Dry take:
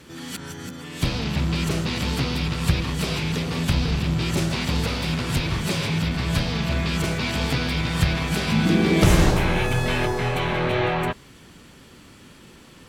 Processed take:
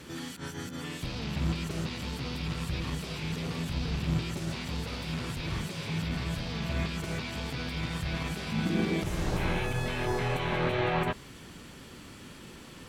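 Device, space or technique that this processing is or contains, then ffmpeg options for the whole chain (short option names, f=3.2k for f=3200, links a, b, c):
de-esser from a sidechain: -filter_complex "[0:a]asplit=2[a][b];[b]highpass=5.2k,apad=whole_len=568254[c];[a][c]sidechaincompress=threshold=-44dB:ratio=8:attack=0.58:release=75"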